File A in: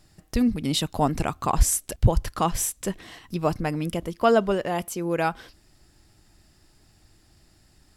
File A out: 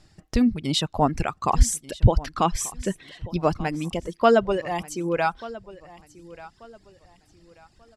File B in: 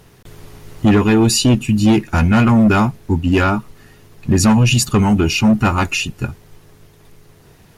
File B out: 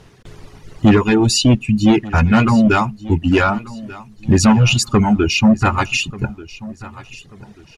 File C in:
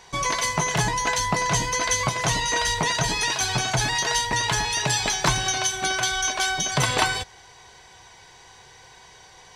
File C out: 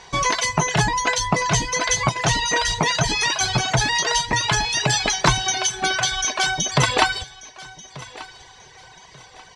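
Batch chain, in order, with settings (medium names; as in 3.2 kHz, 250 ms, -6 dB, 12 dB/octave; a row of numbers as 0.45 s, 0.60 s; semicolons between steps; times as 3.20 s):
low-pass 7.1 kHz 12 dB/octave; reverb removal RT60 1.8 s; feedback delay 1187 ms, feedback 30%, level -19 dB; peak normalisation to -3 dBFS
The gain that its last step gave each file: +2.5 dB, +2.0 dB, +5.5 dB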